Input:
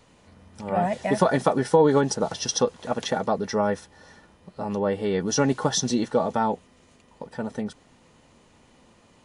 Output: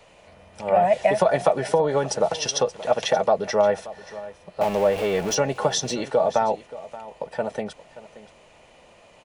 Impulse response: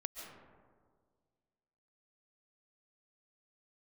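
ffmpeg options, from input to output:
-filter_complex "[0:a]asettb=1/sr,asplit=3[link_01][link_02][link_03];[link_01]atrim=end=4.614[link_04];[link_02]atrim=start=4.61:end=5.35,asetpts=PTS-STARTPTS,afade=type=in:duration=0.004:curve=qsin,afade=type=out:start_time=0.736:duration=0.004:curve=qsin,aeval=exprs='val(0)+0.5*0.0316*sgn(val(0))':channel_layout=same[link_05];[link_03]atrim=start=5.346[link_06];[link_04][link_05]acrossfade=duration=0.004:curve1=hsin:curve2=qsin[link_07];[link_07][link_06]acrossfade=duration=0.004:curve1=qsin:curve2=hsin,equalizer=frequency=100:width=1.4:gain=-4.5,acrossover=split=150[link_08][link_09];[link_09]acompressor=threshold=-23dB:ratio=5[link_10];[link_08][link_10]amix=inputs=2:normalize=0,equalizer=frequency=250:width_type=o:width=0.67:gain=-8,equalizer=frequency=630:width_type=o:width=0.67:gain=11,equalizer=frequency=2500:width_type=o:width=0.67:gain=8,aecho=1:1:578:0.141,volume=1.5dB"

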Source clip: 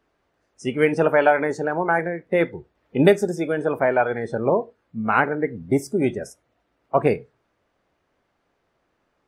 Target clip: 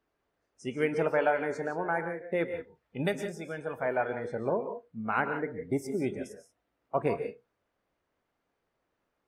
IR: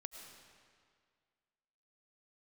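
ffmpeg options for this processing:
-filter_complex "[0:a]asettb=1/sr,asplit=3[link_01][link_02][link_03];[link_01]atrim=end=2.544[link_04];[link_02]atrim=start=2.54:end=3.86,asetpts=PTS-STARTPTS,afade=type=in:duration=0.004:curve=qsin,afade=type=out:start_time=1.316:duration=0.004:curve=qsin,equalizer=frequency=360:width=1.1:gain=-8.5[link_05];[link_03]atrim=start=3.856[link_06];[link_04][link_05]acrossfade=duration=0.004:curve1=hsin:curve2=qsin[link_07];[link_07][link_06]acrossfade=duration=0.004:curve1=qsin:curve2=hsin[link_08];[1:a]atrim=start_sample=2205,atrim=end_sample=6174,asetrate=32634,aresample=44100[link_09];[link_08][link_09]afir=irnorm=-1:irlink=0,volume=-6dB"

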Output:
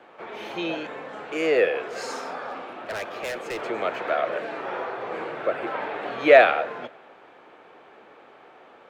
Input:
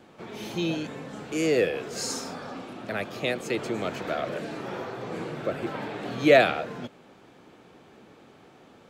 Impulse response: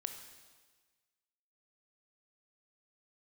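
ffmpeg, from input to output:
-filter_complex "[0:a]acontrast=37,acrossover=split=420 2900:gain=0.1 1 0.126[link_01][link_02][link_03];[link_01][link_02][link_03]amix=inputs=3:normalize=0,asettb=1/sr,asplit=3[link_04][link_05][link_06];[link_04]atrim=end=2.504[link_07];[link_05]atrim=start=2.5:end=3.61,asetpts=PTS-STARTPTS,afade=type=in:duration=0.004:curve=qsin,afade=type=out:start_time=1.106:duration=0.004:curve=qsin,volume=29.5dB,asoftclip=hard,volume=-29.5dB[link_08];[link_06]atrim=start=3.606[link_09];[link_07][link_08]acrossfade=duration=0.004:curve1=hsin:curve2=qsin[link_10];[link_10][link_09]acrossfade=duration=0.004:curve1=qsin:curve2=hsin,asplit=2[link_11][link_12];[1:a]atrim=start_sample=2205[link_13];[link_12][link_13]afir=irnorm=-1:irlink=0,volume=-11.5dB[link_14];[link_11][link_14]amix=inputs=2:normalize=0"

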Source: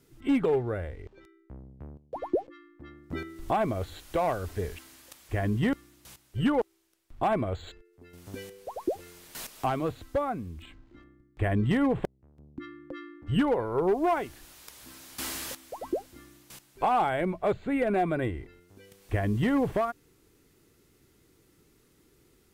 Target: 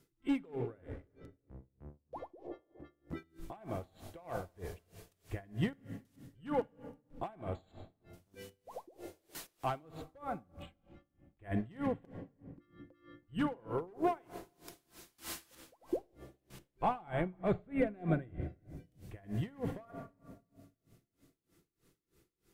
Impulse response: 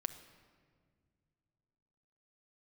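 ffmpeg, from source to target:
-filter_complex "[0:a]asettb=1/sr,asplit=3[link_01][link_02][link_03];[link_01]atrim=end=15.964[link_04];[link_02]atrim=start=15.96:end=18.42,asetpts=PTS-STARTPTS,afade=type=in:duration=0.004:curve=qsin,afade=type=out:start_time=2.456:duration=0.004:curve=qsin,bass=frequency=250:gain=10,treble=frequency=4000:gain=-6[link_05];[link_03]atrim=start=18.416[link_06];[link_04][link_05]acrossfade=duration=0.004:curve1=hsin:curve2=qsin[link_07];[link_07][link_06]acrossfade=duration=0.004:curve1=qsin:curve2=hsin[link_08];[1:a]atrim=start_sample=2205[link_09];[link_08][link_09]afir=irnorm=-1:irlink=0,aeval=exprs='val(0)*pow(10,-27*(0.5-0.5*cos(2*PI*3.2*n/s))/20)':channel_layout=same,volume=-4dB"

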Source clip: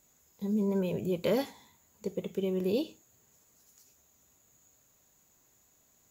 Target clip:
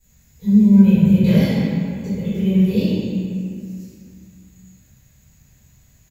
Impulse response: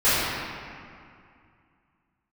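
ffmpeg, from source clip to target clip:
-filter_complex "[0:a]firequalizer=gain_entry='entry(160,0);entry(310,-19);entry(1200,-21);entry(1800,-12)':delay=0.05:min_phase=1[link_01];[1:a]atrim=start_sample=2205[link_02];[link_01][link_02]afir=irnorm=-1:irlink=0,volume=4.5dB"

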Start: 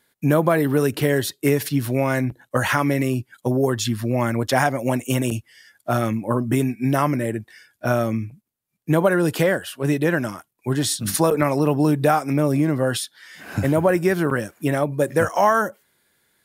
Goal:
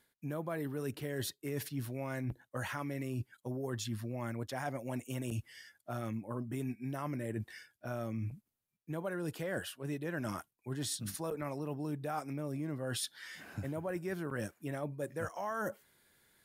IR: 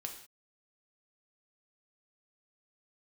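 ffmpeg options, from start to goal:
-af "lowshelf=frequency=72:gain=8,areverse,acompressor=threshold=-31dB:ratio=10,areverse,volume=-4dB"

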